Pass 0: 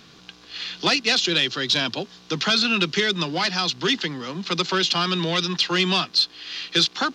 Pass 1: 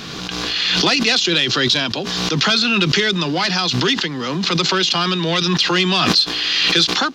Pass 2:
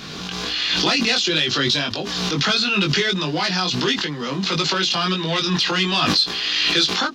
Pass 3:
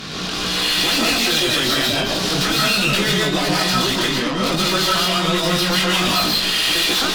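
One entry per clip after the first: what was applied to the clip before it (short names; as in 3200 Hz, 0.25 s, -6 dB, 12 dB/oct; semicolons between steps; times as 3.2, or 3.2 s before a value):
backwards sustainer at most 21 dB/s; gain +3.5 dB
chorus 1.5 Hz, delay 19.5 ms, depth 2.2 ms; ending taper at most 330 dB/s
tube stage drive 26 dB, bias 0.5; digital reverb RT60 0.6 s, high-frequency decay 0.65×, pre-delay 95 ms, DRR -3 dB; gain +6 dB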